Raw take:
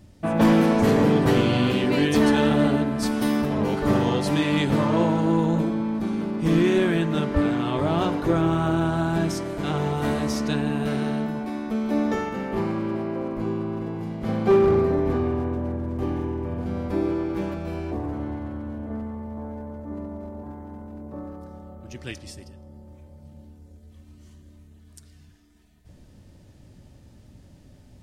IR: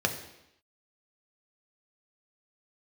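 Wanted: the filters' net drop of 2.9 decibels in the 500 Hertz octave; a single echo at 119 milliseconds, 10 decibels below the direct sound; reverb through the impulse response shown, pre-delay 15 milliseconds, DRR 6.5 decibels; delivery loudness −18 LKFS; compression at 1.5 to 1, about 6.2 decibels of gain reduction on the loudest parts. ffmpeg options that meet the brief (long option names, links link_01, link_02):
-filter_complex "[0:a]equalizer=frequency=500:width_type=o:gain=-4,acompressor=threshold=-33dB:ratio=1.5,aecho=1:1:119:0.316,asplit=2[link_01][link_02];[1:a]atrim=start_sample=2205,adelay=15[link_03];[link_02][link_03]afir=irnorm=-1:irlink=0,volume=-16.5dB[link_04];[link_01][link_04]amix=inputs=2:normalize=0,volume=9dB"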